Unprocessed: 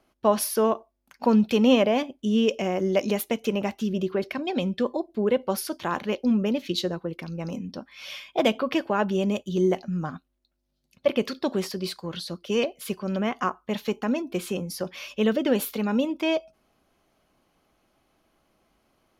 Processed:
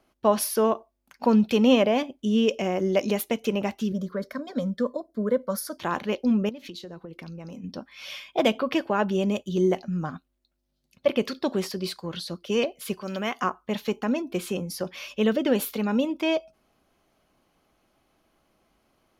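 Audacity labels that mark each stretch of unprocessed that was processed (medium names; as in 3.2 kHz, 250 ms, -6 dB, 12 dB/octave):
3.920000	5.780000	static phaser centre 540 Hz, stages 8
6.490000	7.640000	compression 8:1, threshold -36 dBFS
13.010000	13.420000	tilt EQ +2.5 dB/octave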